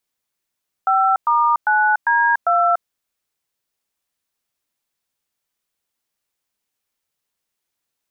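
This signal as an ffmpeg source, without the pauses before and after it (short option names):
-f lavfi -i "aevalsrc='0.168*clip(min(mod(t,0.399),0.29-mod(t,0.399))/0.002,0,1)*(eq(floor(t/0.399),0)*(sin(2*PI*770*mod(t,0.399))+sin(2*PI*1336*mod(t,0.399)))+eq(floor(t/0.399),1)*(sin(2*PI*941*mod(t,0.399))+sin(2*PI*1209*mod(t,0.399)))+eq(floor(t/0.399),2)*(sin(2*PI*852*mod(t,0.399))+sin(2*PI*1477*mod(t,0.399)))+eq(floor(t/0.399),3)*(sin(2*PI*941*mod(t,0.399))+sin(2*PI*1633*mod(t,0.399)))+eq(floor(t/0.399),4)*(sin(2*PI*697*mod(t,0.399))+sin(2*PI*1336*mod(t,0.399))))':d=1.995:s=44100"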